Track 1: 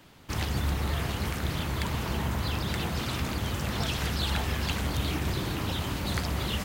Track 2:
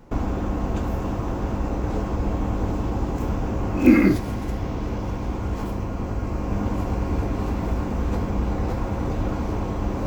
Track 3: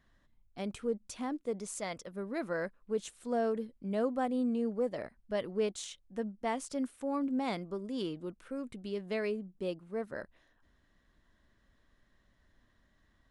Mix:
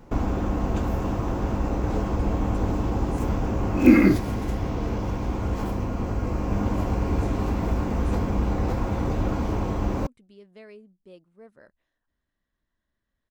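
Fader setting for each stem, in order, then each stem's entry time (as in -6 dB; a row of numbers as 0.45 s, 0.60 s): mute, 0.0 dB, -12.0 dB; mute, 0.00 s, 1.45 s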